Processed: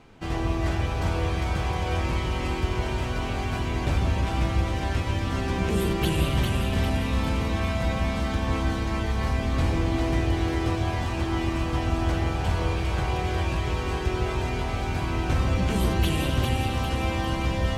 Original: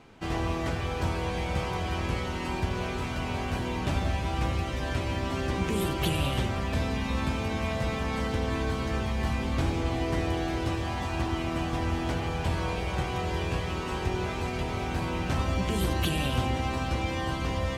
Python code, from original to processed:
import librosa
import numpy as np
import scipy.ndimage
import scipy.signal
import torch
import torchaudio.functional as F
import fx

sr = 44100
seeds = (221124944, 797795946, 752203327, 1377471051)

y = fx.low_shelf(x, sr, hz=72.0, db=7.5)
y = fx.echo_split(y, sr, split_hz=640.0, low_ms=148, high_ms=401, feedback_pct=52, wet_db=-3.5)